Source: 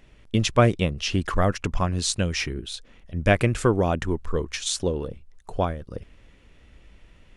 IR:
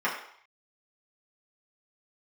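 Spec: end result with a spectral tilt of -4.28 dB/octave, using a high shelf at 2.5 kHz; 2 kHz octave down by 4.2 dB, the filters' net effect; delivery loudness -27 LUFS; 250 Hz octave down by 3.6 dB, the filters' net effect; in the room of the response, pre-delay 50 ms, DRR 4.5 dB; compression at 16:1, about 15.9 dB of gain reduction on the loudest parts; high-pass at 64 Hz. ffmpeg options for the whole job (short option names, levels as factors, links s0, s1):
-filter_complex "[0:a]highpass=64,equalizer=f=250:t=o:g=-5,equalizer=f=2000:t=o:g=-4,highshelf=f=2500:g=-3,acompressor=threshold=0.0316:ratio=16,asplit=2[s0][s1];[1:a]atrim=start_sample=2205,adelay=50[s2];[s1][s2]afir=irnorm=-1:irlink=0,volume=0.141[s3];[s0][s3]amix=inputs=2:normalize=0,volume=2.82"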